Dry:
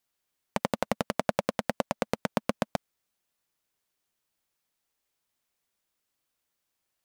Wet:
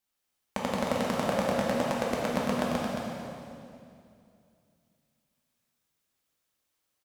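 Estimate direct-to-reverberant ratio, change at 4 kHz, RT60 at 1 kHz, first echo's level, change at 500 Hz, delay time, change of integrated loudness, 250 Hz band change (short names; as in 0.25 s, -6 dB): -5.0 dB, +2.0 dB, 2.3 s, -6.0 dB, +2.5 dB, 0.222 s, +2.0 dB, +4.0 dB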